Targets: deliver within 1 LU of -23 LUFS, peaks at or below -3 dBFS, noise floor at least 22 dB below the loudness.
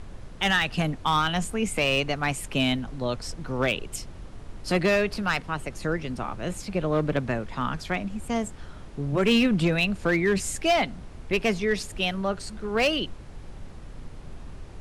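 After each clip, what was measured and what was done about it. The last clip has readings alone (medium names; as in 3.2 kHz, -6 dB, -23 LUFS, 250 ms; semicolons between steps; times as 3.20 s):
clipped samples 0.7%; clipping level -15.5 dBFS; noise floor -43 dBFS; noise floor target -48 dBFS; loudness -26.0 LUFS; peak level -15.5 dBFS; loudness target -23.0 LUFS
-> clip repair -15.5 dBFS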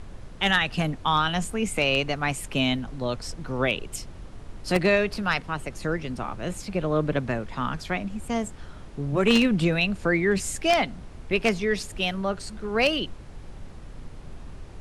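clipped samples 0.0%; noise floor -43 dBFS; noise floor target -48 dBFS
-> noise print and reduce 6 dB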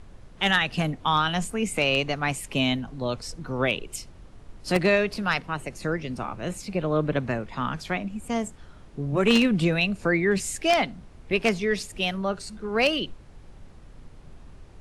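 noise floor -48 dBFS; loudness -25.5 LUFS; peak level -6.5 dBFS; loudness target -23.0 LUFS
-> trim +2.5 dB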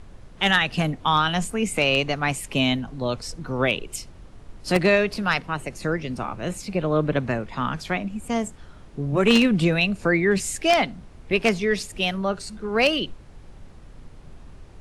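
loudness -23.0 LUFS; peak level -4.0 dBFS; noise floor -46 dBFS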